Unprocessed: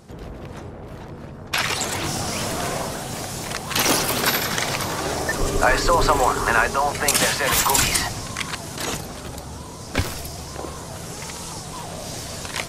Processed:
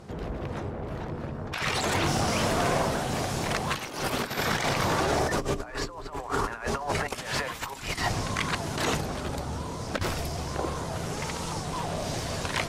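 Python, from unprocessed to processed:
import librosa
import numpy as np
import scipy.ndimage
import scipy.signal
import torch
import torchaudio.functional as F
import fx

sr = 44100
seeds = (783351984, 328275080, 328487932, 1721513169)

y = fx.over_compress(x, sr, threshold_db=-25.0, ratio=-0.5)
y = fx.tube_stage(y, sr, drive_db=14.0, bias=0.3)
y = fx.high_shelf(y, sr, hz=5300.0, db=-11.5)
y = fx.hum_notches(y, sr, base_hz=60, count=5)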